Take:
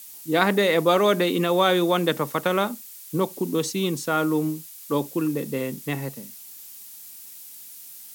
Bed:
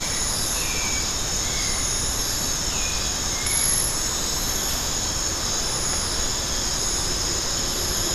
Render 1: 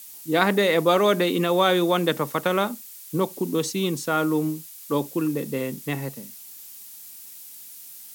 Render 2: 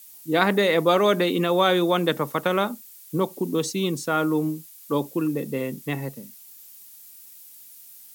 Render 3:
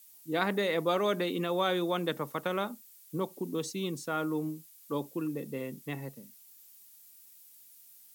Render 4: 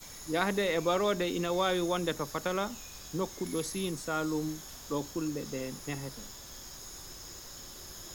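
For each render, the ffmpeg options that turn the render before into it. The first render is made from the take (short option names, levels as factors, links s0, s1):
-af anull
-af "afftdn=nr=6:nf=-43"
-af "volume=0.335"
-filter_complex "[1:a]volume=0.075[s0];[0:a][s0]amix=inputs=2:normalize=0"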